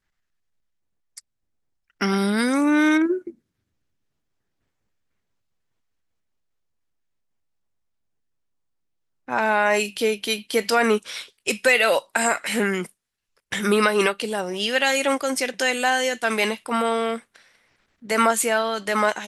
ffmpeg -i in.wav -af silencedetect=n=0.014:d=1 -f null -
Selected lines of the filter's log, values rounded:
silence_start: 0.00
silence_end: 1.17 | silence_duration: 1.17
silence_start: 3.30
silence_end: 9.28 | silence_duration: 5.98